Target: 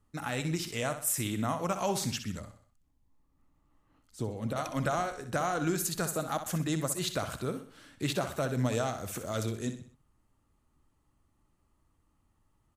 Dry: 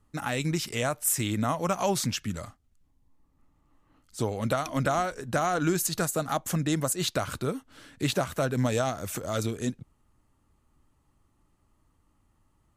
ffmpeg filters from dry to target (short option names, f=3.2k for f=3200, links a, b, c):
-filter_complex "[0:a]aecho=1:1:63|126|189|252:0.316|0.133|0.0558|0.0234,asettb=1/sr,asplit=3[a][b][c];[a]atrim=end=2.394[d];[b]atrim=start=2.39:end=4.56,asetpts=PTS-STARTPTS,afade=t=in:d=0.004:c=qsin,afade=t=out:st=2.166:d=0.004:c=qsin,acrossover=split=460[e][f];[f]acompressor=threshold=-54dB:ratio=1.5[g];[e][g]amix=inputs=2:normalize=0[h];[c]atrim=start=4.556[i];[d][h]acrossfade=d=0.004:c1=hsin:c2=qsin[j];[j][i]acrossfade=d=0.004:c1=qsin:c2=hsin,volume=-4.5dB"